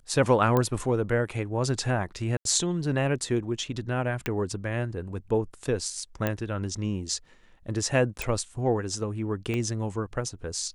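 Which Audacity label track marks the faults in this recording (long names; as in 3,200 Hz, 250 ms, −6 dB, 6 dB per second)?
0.570000	0.570000	click −12 dBFS
2.370000	2.450000	drop-out 82 ms
4.260000	4.260000	click −13 dBFS
6.270000	6.270000	click −13 dBFS
8.220000	8.220000	click
9.540000	9.540000	click −18 dBFS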